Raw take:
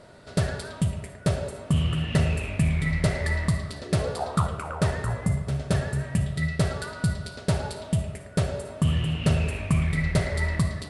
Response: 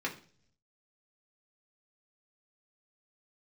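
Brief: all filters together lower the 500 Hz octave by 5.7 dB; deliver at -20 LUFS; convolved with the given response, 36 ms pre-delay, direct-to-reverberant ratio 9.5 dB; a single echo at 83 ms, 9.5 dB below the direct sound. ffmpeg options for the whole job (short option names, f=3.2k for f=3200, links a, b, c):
-filter_complex "[0:a]equalizer=f=500:t=o:g=-7.5,aecho=1:1:83:0.335,asplit=2[a][b];[1:a]atrim=start_sample=2205,adelay=36[c];[b][c]afir=irnorm=-1:irlink=0,volume=-14.5dB[d];[a][d]amix=inputs=2:normalize=0,volume=6.5dB"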